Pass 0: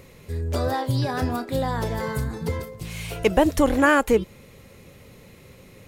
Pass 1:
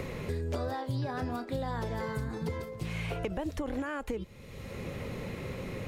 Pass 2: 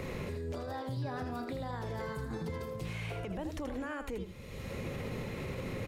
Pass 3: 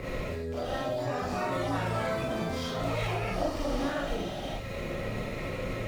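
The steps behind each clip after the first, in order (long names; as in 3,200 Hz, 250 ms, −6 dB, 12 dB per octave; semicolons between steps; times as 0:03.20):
high-shelf EQ 7,200 Hz −11 dB; brickwall limiter −15.5 dBFS, peak gain reduction 11 dB; multiband upward and downward compressor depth 100%; level −9 dB
brickwall limiter −32 dBFS, peak gain reduction 10 dB; on a send: single-tap delay 80 ms −8 dB; on the sum: level +1 dB
running median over 5 samples; delay with pitch and tempo change per echo 623 ms, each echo +7 semitones, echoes 2; convolution reverb, pre-delay 4 ms, DRR −5.5 dB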